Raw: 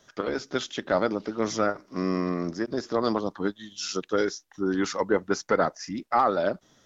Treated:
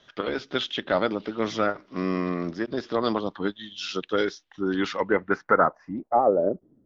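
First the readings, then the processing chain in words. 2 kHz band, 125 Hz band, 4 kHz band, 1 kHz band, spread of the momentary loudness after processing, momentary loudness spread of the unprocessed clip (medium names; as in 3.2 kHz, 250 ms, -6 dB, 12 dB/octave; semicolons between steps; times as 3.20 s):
+3.0 dB, 0.0 dB, +3.0 dB, +1.5 dB, 10 LU, 7 LU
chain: low-pass sweep 3.3 kHz -> 270 Hz, 4.86–6.86 s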